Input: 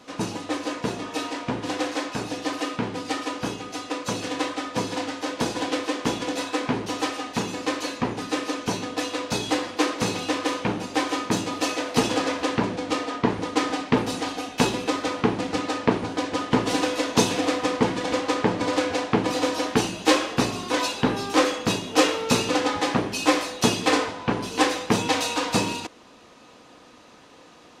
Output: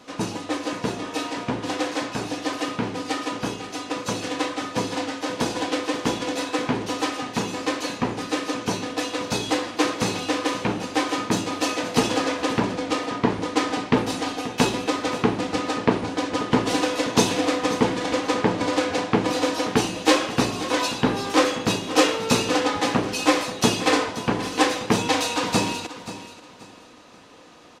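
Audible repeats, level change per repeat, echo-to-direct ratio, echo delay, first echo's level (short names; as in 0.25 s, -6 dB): 2, -11.0 dB, -13.5 dB, 0.532 s, -14.0 dB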